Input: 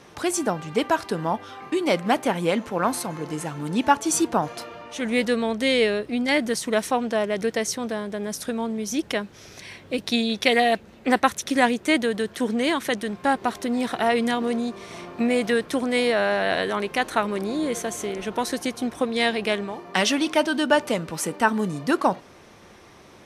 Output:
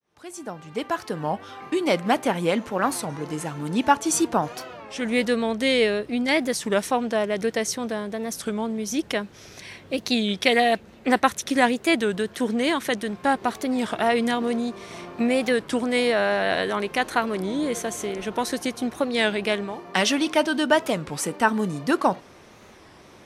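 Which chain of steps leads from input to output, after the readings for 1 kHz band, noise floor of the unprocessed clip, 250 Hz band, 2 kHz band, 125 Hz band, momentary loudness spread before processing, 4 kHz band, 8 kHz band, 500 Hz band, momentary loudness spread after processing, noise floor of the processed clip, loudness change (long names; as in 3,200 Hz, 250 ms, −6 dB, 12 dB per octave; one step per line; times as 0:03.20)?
0.0 dB, −49 dBFS, 0.0 dB, 0.0 dB, 0.0 dB, 9 LU, 0.0 dB, −0.5 dB, 0.0 dB, 10 LU, −49 dBFS, 0.0 dB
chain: fade in at the beginning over 1.58 s
wow of a warped record 33 1/3 rpm, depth 160 cents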